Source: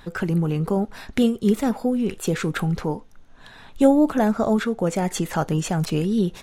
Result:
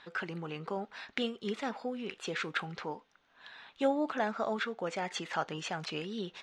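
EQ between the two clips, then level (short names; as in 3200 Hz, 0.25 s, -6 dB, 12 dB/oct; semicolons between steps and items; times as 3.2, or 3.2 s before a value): band-pass 3900 Hz, Q 0.81; air absorption 85 m; high shelf 3000 Hz -11 dB; +4.5 dB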